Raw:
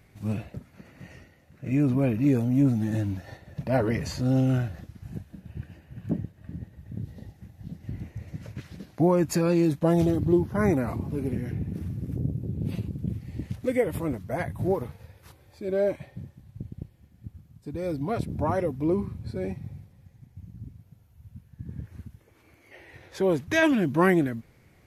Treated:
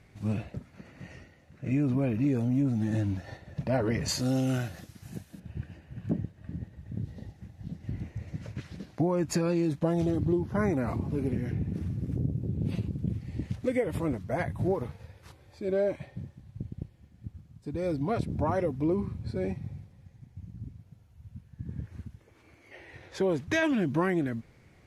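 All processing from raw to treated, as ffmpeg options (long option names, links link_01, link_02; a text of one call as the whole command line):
ffmpeg -i in.wav -filter_complex "[0:a]asettb=1/sr,asplit=3[link_01][link_02][link_03];[link_01]atrim=end=4.084[link_04];[link_02]atrim=start=4.08:end=5.4,asetpts=PTS-STARTPTS,afade=type=in:duration=0.004:curve=qsin,afade=type=out:start_time=1.316:duration=0.004:curve=qsin,highpass=frequency=170:poles=1,aemphasis=mode=production:type=75kf[link_05];[link_03]atrim=start=5.396[link_06];[link_04][link_05]acrossfade=duration=0.004:curve1=hsin:curve2=qsin[link_07];[link_07][link_06]acrossfade=duration=0.004:curve1=qsin:curve2=hsin,lowpass=8800,acompressor=threshold=-23dB:ratio=6" out.wav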